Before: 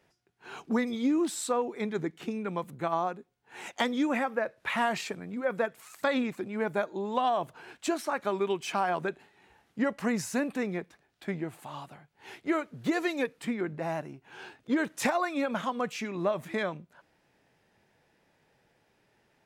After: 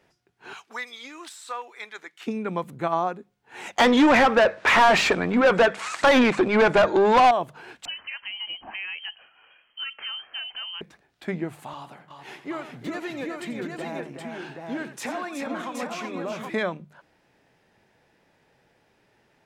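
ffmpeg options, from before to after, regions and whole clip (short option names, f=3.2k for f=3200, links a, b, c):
-filter_complex "[0:a]asettb=1/sr,asplit=3[a][b][c];[a]atrim=end=0.534[d];[b]atrim=start=0.53:end=2.27,asetpts=PTS-STARTPTS,afade=t=in:d=0.004:c=qsin,afade=t=out:st=1.736:d=0.004:c=qsin,highpass=1.3k,deesser=0.95[e];[c]atrim=start=2.266[f];[d][e]acrossfade=d=0.004:c1=hsin:c2=qsin[g];[g][f]acrossfade=d=0.004:c1=qsin:c2=hsin,asettb=1/sr,asplit=3[h][i][j];[h]atrim=end=3.784[k];[i]atrim=start=3.78:end=7.31,asetpts=PTS-STARTPTS,afade=t=in:d=0.004:c=qsin,afade=t=out:st=3.526:d=0.004:c=qsin,lowpass=f=8.9k:w=0.5412,lowpass=f=8.9k:w=1.3066,asplit=2[l][m];[m]highpass=f=720:p=1,volume=27dB,asoftclip=type=tanh:threshold=-13.5dB[n];[l][n]amix=inputs=2:normalize=0,lowpass=f=2.4k:p=1,volume=-6dB[o];[j]atrim=start=7.306[p];[k][o]acrossfade=d=0.004:c1=hsin:c2=qsin[q];[q][p]acrossfade=d=0.004:c1=qsin:c2=hsin,asettb=1/sr,asplit=3[r][s][t];[r]atrim=end=7.854[u];[s]atrim=start=7.85:end=10.81,asetpts=PTS-STARTPTS,afade=t=in:d=0.004:c=qsin,afade=t=out:st=2.956:d=0.004:c=qsin,acompressor=threshold=-43dB:ratio=2:attack=3.2:release=140:knee=1:detection=peak,lowpass=f=2.8k:t=q:w=0.5098,lowpass=f=2.8k:t=q:w=0.6013,lowpass=f=2.8k:t=q:w=0.9,lowpass=f=2.8k:t=q:w=2.563,afreqshift=-3300[v];[t]atrim=start=10.806[w];[u][v]acrossfade=d=0.004:c1=hsin:c2=qsin[x];[x][w]acrossfade=d=0.004:c1=qsin:c2=hsin,asettb=1/sr,asplit=3[y][z][aa];[y]atrim=end=11.734[ab];[z]atrim=start=11.73:end=16.5,asetpts=PTS-STARTPTS,afade=t=in:d=0.004:c=qsin,afade=t=out:st=4.766:d=0.004:c=qsin,highpass=140,acompressor=threshold=-41dB:ratio=2:attack=3.2:release=140:knee=1:detection=peak,aecho=1:1:87|349|372|617|773:0.251|0.158|0.501|0.106|0.631,atrim=end_sample=210357[ac];[aa]atrim=start=16.496[ad];[ab][ac]acrossfade=d=0.004:c1=hsin:c2=qsin[ae];[ae][ad]acrossfade=d=0.004:c1=qsin:c2=hsin,highshelf=f=8.6k:g=-5.5,bandreject=f=50:t=h:w=6,bandreject=f=100:t=h:w=6,bandreject=f=150:t=h:w=6,bandreject=f=200:t=h:w=6,volume=5dB"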